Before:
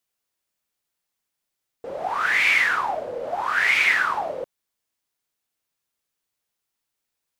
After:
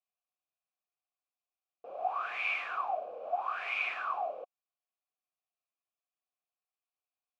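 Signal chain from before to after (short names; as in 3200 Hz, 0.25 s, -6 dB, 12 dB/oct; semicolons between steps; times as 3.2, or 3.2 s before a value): vowel filter a; bell 690 Hz -2.5 dB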